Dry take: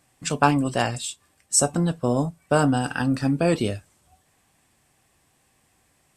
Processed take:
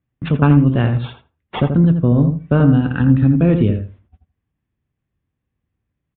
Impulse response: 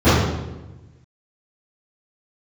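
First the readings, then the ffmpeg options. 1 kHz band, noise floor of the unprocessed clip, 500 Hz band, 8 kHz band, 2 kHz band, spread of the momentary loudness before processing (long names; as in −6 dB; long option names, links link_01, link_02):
−3.0 dB, −65 dBFS, +2.5 dB, below −40 dB, 0.0 dB, 9 LU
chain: -filter_complex "[0:a]highpass=frequency=58:poles=1,aemphasis=mode=reproduction:type=riaa,agate=range=-23dB:threshold=-46dB:ratio=16:detection=peak,equalizer=frequency=760:width_type=o:width=0.86:gain=-9.5,asplit=2[link_01][link_02];[link_02]acompressor=threshold=-24dB:ratio=6,volume=0.5dB[link_03];[link_01][link_03]amix=inputs=2:normalize=0,acrusher=samples=5:mix=1:aa=0.000001,asplit=2[link_04][link_05];[link_05]adelay=83,lowpass=frequency=1500:poles=1,volume=-6.5dB,asplit=2[link_06][link_07];[link_07]adelay=83,lowpass=frequency=1500:poles=1,volume=0.18,asplit=2[link_08][link_09];[link_09]adelay=83,lowpass=frequency=1500:poles=1,volume=0.18[link_10];[link_04][link_06][link_08][link_10]amix=inputs=4:normalize=0,aresample=8000,aresample=44100"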